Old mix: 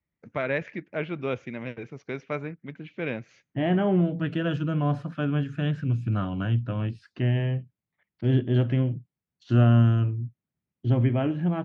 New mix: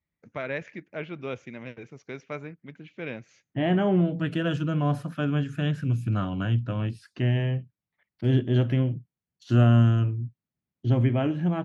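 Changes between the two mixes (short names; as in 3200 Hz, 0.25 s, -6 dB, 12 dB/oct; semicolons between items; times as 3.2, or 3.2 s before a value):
first voice -5.0 dB; master: remove air absorption 120 m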